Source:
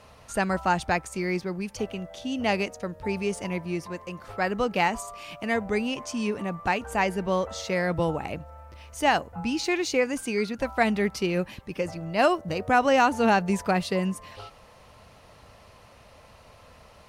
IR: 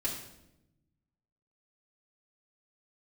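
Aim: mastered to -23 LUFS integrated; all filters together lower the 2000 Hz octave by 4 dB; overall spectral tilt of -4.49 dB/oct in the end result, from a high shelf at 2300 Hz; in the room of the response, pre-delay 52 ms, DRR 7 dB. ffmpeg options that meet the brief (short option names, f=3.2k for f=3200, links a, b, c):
-filter_complex "[0:a]equalizer=f=2k:t=o:g=-8.5,highshelf=f=2.3k:g=6,asplit=2[a][b];[1:a]atrim=start_sample=2205,adelay=52[c];[b][c]afir=irnorm=-1:irlink=0,volume=-11dB[d];[a][d]amix=inputs=2:normalize=0,volume=3.5dB"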